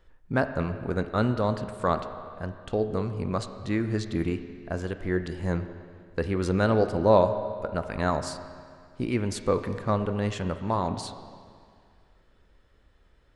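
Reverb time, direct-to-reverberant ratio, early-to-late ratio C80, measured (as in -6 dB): 2.1 s, 8.5 dB, 11.0 dB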